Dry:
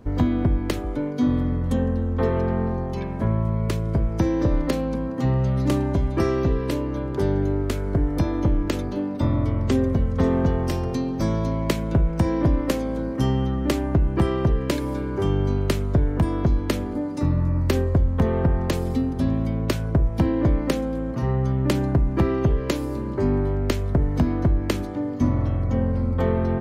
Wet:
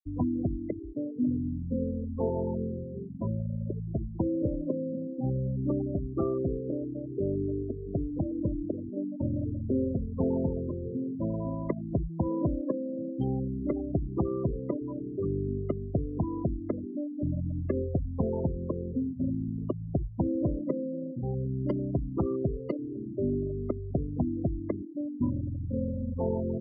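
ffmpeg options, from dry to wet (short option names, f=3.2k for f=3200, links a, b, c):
-filter_complex "[0:a]asettb=1/sr,asplit=3[a][b][c];[a]atrim=end=21.324[d];[b]atrim=start=21.32:end=22.75,asetpts=PTS-STARTPTS,afade=t=in:d=0.004:c=qsin,afade=t=out:st=1.426:d=0.004:c=qsin,aemphasis=mode=production:type=50fm[e];[c]atrim=start=22.746[f];[d][e]acrossfade=d=0.004:c1=hsin:c2=qsin[g];[g][f]acrossfade=d=0.004:c1=qsin:c2=hsin,highpass=f=140:p=1,afftfilt=real='re*gte(hypot(re,im),0.141)':imag='im*gte(hypot(re,im),0.141)':win_size=1024:overlap=0.75,lowpass=1.7k,volume=-5.5dB"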